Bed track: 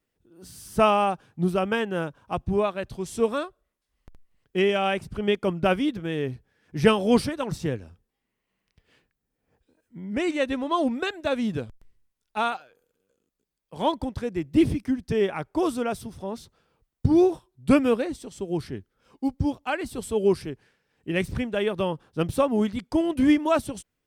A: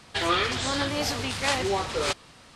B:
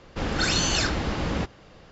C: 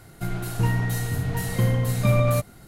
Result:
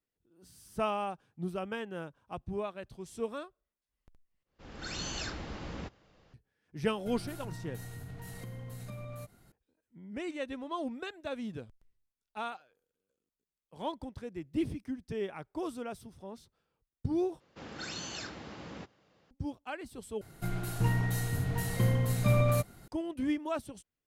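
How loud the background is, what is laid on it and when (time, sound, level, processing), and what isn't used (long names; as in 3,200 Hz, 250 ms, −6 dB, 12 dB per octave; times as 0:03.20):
bed track −12.5 dB
0:04.43: overwrite with B −14 dB + fade in at the beginning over 0.61 s
0:06.85: mix in C −14 dB + downward compressor, threshold −26 dBFS
0:17.40: overwrite with B −16.5 dB + high-pass filter 120 Hz
0:20.21: overwrite with C −6 dB
not used: A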